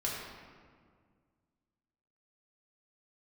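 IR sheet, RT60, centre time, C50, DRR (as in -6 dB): 1.9 s, 92 ms, 0.0 dB, -5.0 dB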